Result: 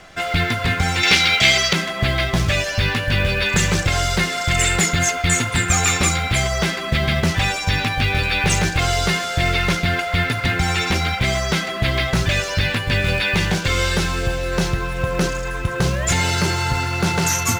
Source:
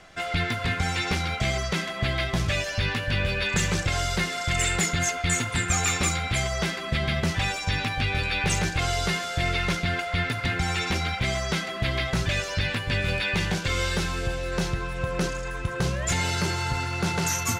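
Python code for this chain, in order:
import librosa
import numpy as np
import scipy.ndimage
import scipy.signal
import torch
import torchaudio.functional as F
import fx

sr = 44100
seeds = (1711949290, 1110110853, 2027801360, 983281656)

p1 = fx.weighting(x, sr, curve='D', at=(1.03, 1.73))
p2 = fx.quant_float(p1, sr, bits=2)
p3 = p1 + (p2 * 10.0 ** (-5.0 / 20.0))
y = p3 * 10.0 ** (3.0 / 20.0)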